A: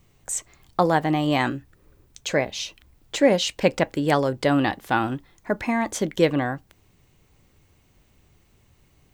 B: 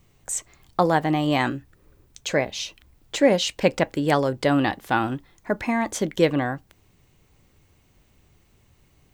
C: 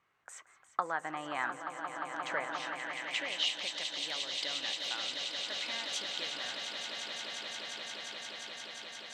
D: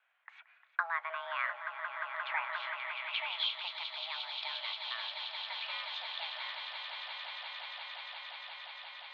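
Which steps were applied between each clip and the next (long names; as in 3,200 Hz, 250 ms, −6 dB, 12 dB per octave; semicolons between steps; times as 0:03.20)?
no processing that can be heard
downward compressor, threshold −21 dBFS, peak gain reduction 9.5 dB; echo that builds up and dies away 176 ms, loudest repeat 8, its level −9 dB; band-pass filter sweep 1,400 Hz → 3,700 Hz, 0:02.56–0:03.67
single-sideband voice off tune +330 Hz 240–3,400 Hz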